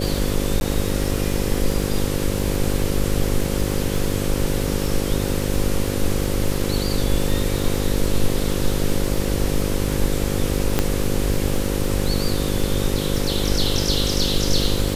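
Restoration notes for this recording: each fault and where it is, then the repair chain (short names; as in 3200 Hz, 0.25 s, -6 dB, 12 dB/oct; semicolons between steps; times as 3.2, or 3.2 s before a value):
buzz 50 Hz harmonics 11 -24 dBFS
crackle 44/s -26 dBFS
0.6–0.61 gap 11 ms
10.79 pop -3 dBFS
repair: de-click; de-hum 50 Hz, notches 11; interpolate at 0.6, 11 ms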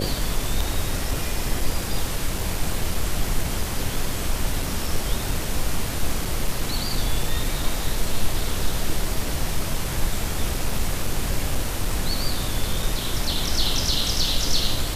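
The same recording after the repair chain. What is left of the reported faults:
none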